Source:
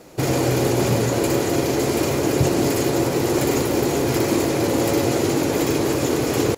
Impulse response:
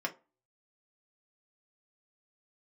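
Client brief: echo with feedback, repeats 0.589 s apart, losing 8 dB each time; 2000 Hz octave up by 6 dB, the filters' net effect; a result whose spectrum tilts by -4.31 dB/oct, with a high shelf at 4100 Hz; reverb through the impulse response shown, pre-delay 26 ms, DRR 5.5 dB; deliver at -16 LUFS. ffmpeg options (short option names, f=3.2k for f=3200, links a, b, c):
-filter_complex "[0:a]equalizer=f=2k:t=o:g=6,highshelf=f=4.1k:g=5.5,aecho=1:1:589|1178|1767|2356|2945:0.398|0.159|0.0637|0.0255|0.0102,asplit=2[a][b];[1:a]atrim=start_sample=2205,adelay=26[c];[b][c]afir=irnorm=-1:irlink=0,volume=-10dB[d];[a][d]amix=inputs=2:normalize=0,volume=1dB"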